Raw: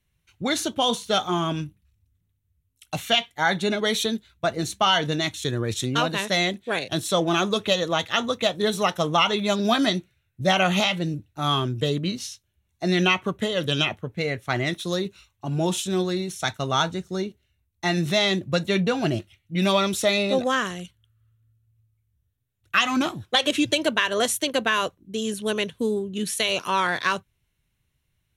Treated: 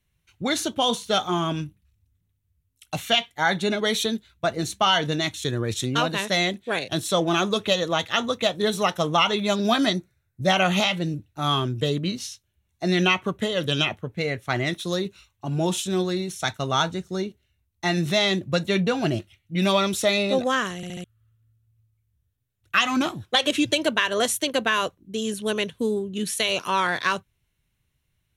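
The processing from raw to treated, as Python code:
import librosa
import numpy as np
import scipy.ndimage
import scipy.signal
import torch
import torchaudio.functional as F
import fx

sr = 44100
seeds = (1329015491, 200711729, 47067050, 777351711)

y = fx.peak_eq(x, sr, hz=2900.0, db=-15.0, octaves=0.6, at=(9.93, 10.44))
y = fx.edit(y, sr, fx.stutter_over(start_s=20.76, slice_s=0.07, count=4), tone=tone)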